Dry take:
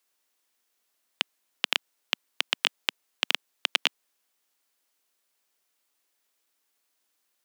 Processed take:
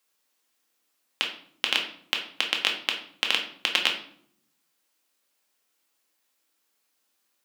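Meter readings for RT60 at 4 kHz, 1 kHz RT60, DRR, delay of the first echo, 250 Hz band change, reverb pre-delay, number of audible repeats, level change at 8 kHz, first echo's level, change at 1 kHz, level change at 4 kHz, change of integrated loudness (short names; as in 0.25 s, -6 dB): 0.45 s, 0.55 s, 1.0 dB, none, +4.5 dB, 3 ms, none, +1.5 dB, none, +2.5 dB, +2.5 dB, +2.5 dB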